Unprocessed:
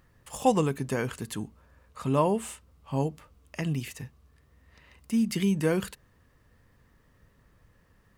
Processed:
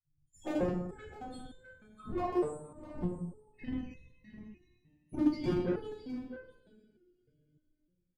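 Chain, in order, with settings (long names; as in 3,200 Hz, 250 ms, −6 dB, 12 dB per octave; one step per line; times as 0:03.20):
spectral dynamics exaggerated over time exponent 3
Bessel low-pass filter 9,100 Hz
bass and treble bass +9 dB, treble −3 dB
in parallel at −1 dB: downward compressor 6 to 1, threshold −36 dBFS, peak gain reduction 17.5 dB
on the sum: random phases in short frames
spectral peaks only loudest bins 32
coupled-rooms reverb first 0.89 s, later 3.4 s, from −20 dB, DRR −7.5 dB
harmonic generator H 3 −20 dB, 4 −24 dB, 8 −31 dB, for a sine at −8.5 dBFS
on a send: single-tap delay 655 ms −13.5 dB
on the sum: step-sequenced resonator 3.3 Hz 150–510 Hz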